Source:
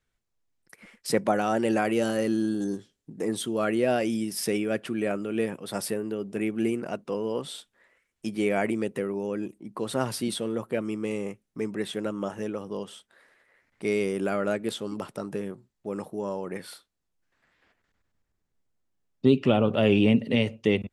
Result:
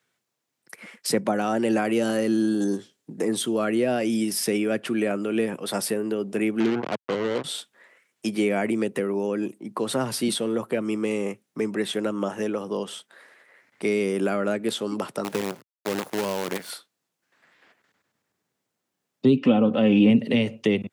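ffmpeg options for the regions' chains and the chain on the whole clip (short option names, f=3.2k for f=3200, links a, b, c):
-filter_complex "[0:a]asettb=1/sr,asplit=3[a][b][c];[a]atrim=end=6.604[d];[b]atrim=start=6.6:end=7.44,asetpts=PTS-STARTPTS,afade=t=in:d=0.004:c=qsin,afade=t=out:st=0.836:d=0.004:c=qsin,lowpass=1.1k,acrusher=bits=4:mix=0:aa=0.5[e];[c]atrim=start=7.436[f];[d][e]acrossfade=d=0.004:c1=hsin:c2=qsin[g];[g][f]acrossfade=d=0.004:c1=qsin:c2=hsin,asettb=1/sr,asplit=3[h][i][j];[h]atrim=end=15.244[k];[i]atrim=start=15.24:end=16.7,asetpts=PTS-STARTPTS,afade=t=in:d=0.004:c=qsin,afade=t=out:st=1.456:d=0.004:c=qsin,agate=range=-33dB:threshold=-55dB:ratio=3:release=100:detection=peak,acrusher=bits=6:dc=4:mix=0:aa=0.000001[l];[j]atrim=start=16.696[m];[k][l]acrossfade=d=0.004:c1=hsin:c2=qsin[n];[n][m]acrossfade=d=0.004:c1=qsin:c2=hsin,asettb=1/sr,asplit=3[o][p][q];[o]atrim=end=19.364[r];[p]atrim=start=19.36:end=20.1,asetpts=PTS-STARTPTS,afade=t=in:d=0.004:c=qsin,afade=t=out:st=0.736:d=0.004:c=qsin,highshelf=f=6.1k:g=-11.5,aecho=1:1:3.9:0.64,atrim=end_sample=32634[s];[q]atrim=start=20.096[t];[r][s]acrossfade=d=0.004:c1=hsin:c2=qsin[u];[u][t]acrossfade=d=0.004:c1=qsin:c2=hsin,highpass=f=110:w=0.5412,highpass=f=110:w=1.3066,lowshelf=f=150:g=-11.5,acrossover=split=270[v][w];[w]acompressor=threshold=-34dB:ratio=3[x];[v][x]amix=inputs=2:normalize=0,volume=8.5dB"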